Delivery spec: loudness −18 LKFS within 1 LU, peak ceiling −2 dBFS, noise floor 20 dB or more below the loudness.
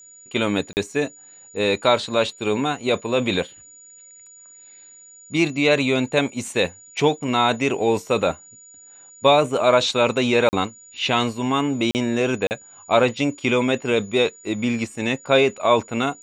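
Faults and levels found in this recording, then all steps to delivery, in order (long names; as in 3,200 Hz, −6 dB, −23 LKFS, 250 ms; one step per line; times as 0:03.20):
number of dropouts 4; longest dropout 39 ms; interfering tone 6,900 Hz; level of the tone −44 dBFS; integrated loudness −21.0 LKFS; sample peak −3.0 dBFS; target loudness −18.0 LKFS
→ repair the gap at 0:00.73/0:10.49/0:11.91/0:12.47, 39 ms
notch filter 6,900 Hz, Q 30
level +3 dB
brickwall limiter −2 dBFS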